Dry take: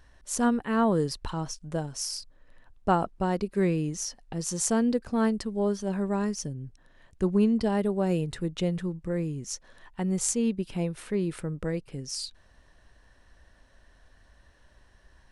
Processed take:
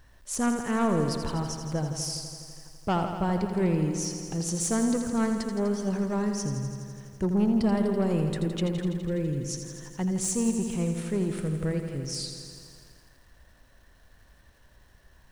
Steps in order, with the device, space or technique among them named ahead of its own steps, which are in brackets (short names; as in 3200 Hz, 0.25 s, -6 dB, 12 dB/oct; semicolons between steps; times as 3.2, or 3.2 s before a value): open-reel tape (soft clip -21 dBFS, distortion -14 dB; bell 130 Hz +4.5 dB 1.05 oct; white noise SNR 47 dB); lo-fi delay 83 ms, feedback 80%, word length 10-bit, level -8.5 dB